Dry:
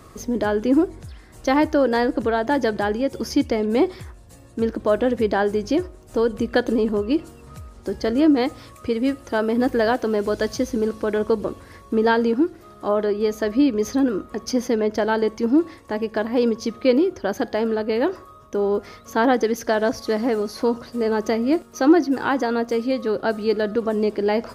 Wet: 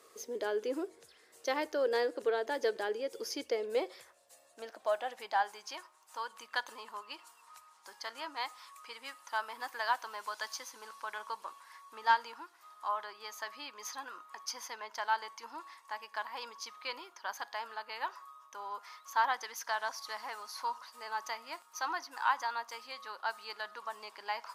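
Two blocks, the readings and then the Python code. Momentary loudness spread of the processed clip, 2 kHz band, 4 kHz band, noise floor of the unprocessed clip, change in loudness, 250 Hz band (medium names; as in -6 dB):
15 LU, -9.0 dB, -8.0 dB, -46 dBFS, -16.0 dB, -31.0 dB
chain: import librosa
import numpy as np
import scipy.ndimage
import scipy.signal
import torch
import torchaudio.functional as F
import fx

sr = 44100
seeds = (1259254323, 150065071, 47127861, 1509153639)

y = fx.tone_stack(x, sr, knobs='5-5-5')
y = fx.filter_sweep_highpass(y, sr, from_hz=450.0, to_hz=960.0, start_s=3.43, end_s=5.8, q=5.2)
y = fx.cheby_harmonics(y, sr, harmonics=(3,), levels_db=(-25,), full_scale_db=-14.0)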